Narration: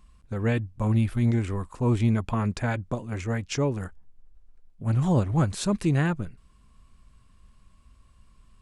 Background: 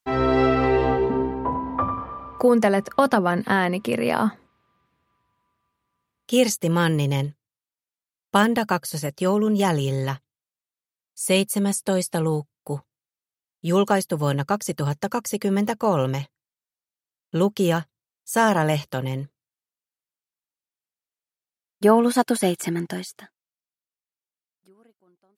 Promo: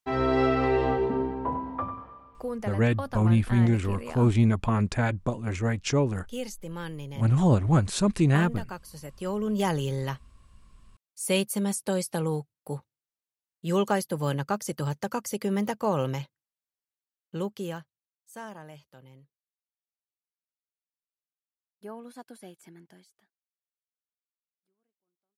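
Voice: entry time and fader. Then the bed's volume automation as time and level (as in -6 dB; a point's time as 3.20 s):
2.35 s, +1.5 dB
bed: 1.56 s -4.5 dB
2.39 s -16.5 dB
8.89 s -16.5 dB
9.61 s -5.5 dB
16.92 s -5.5 dB
18.70 s -25.5 dB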